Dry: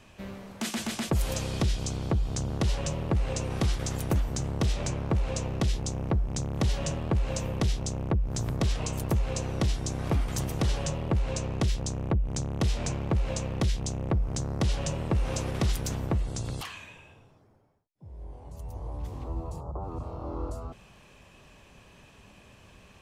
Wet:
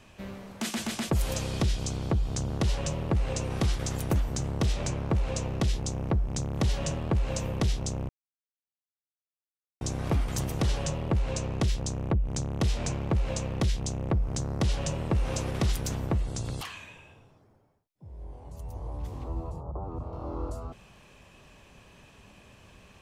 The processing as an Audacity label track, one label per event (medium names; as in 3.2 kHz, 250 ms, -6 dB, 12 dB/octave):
8.090000	9.810000	mute
19.510000	20.130000	treble shelf 2.3 kHz -11 dB